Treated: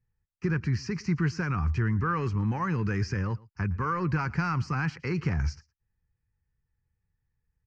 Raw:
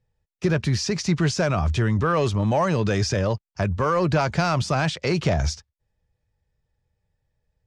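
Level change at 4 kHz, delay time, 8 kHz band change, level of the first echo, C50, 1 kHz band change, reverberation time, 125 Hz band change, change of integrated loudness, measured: -15.5 dB, 0.114 s, under -15 dB, -23.0 dB, none, -7.0 dB, none, -4.5 dB, -6.5 dB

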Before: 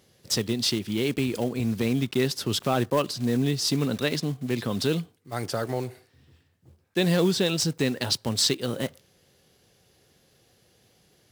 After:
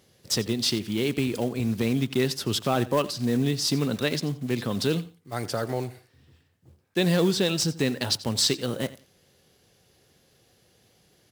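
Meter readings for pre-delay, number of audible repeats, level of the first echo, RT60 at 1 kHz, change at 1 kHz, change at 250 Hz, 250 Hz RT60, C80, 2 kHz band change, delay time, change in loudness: none, 2, -18.0 dB, none, 0.0 dB, 0.0 dB, none, none, 0.0 dB, 88 ms, 0.0 dB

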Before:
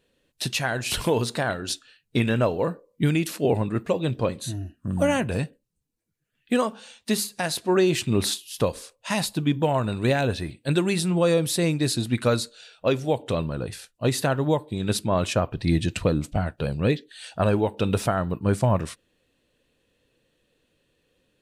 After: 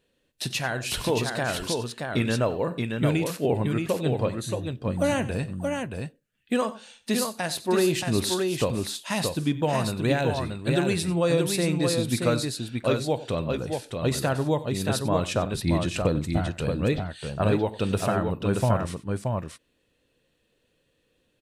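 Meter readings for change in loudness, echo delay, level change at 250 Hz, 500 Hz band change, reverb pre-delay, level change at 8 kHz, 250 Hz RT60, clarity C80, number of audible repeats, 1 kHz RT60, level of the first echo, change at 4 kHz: -1.5 dB, 46 ms, -1.0 dB, -1.0 dB, none, -1.0 dB, none, none, 3, none, -19.5 dB, -1.0 dB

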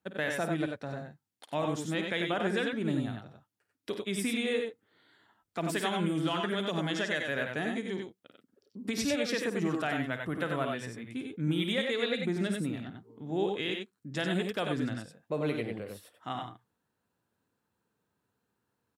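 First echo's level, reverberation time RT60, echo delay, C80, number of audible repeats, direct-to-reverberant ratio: -11.0 dB, none, 52 ms, none, 2, none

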